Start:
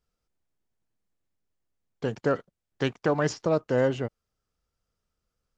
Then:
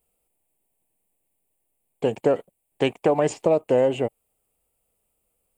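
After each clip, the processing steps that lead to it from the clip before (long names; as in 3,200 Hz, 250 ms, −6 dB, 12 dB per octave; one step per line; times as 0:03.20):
drawn EQ curve 130 Hz 0 dB, 790 Hz +13 dB, 2,000 Hz −4 dB, 5,800 Hz −17 dB, 8,500 Hz +10 dB
downward compressor, threshold −14 dBFS, peak gain reduction 5 dB
high shelf with overshoot 1,900 Hz +9.5 dB, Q 3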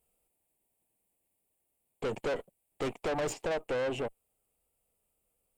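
speech leveller
tube saturation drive 29 dB, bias 0.55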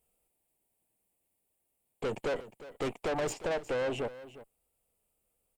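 single-tap delay 357 ms −16 dB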